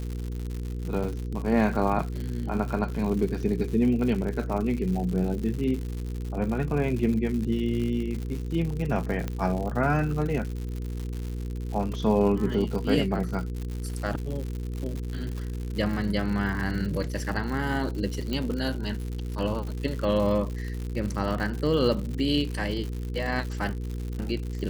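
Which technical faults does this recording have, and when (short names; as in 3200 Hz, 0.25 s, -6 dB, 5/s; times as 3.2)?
crackle 140/s -32 dBFS
hum 60 Hz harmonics 8 -32 dBFS
1.04 gap 5 ms
9.28 pop -17 dBFS
18.33 pop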